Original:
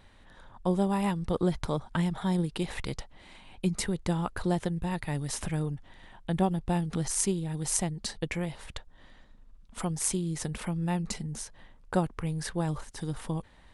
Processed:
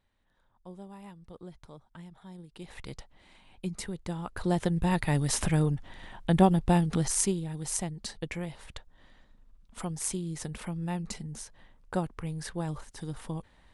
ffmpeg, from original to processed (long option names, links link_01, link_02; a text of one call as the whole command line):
ffmpeg -i in.wav -af "volume=5.5dB,afade=type=in:start_time=2.47:duration=0.46:silence=0.237137,afade=type=in:start_time=4.24:duration=0.66:silence=0.251189,afade=type=out:start_time=6.64:duration=0.91:silence=0.354813" out.wav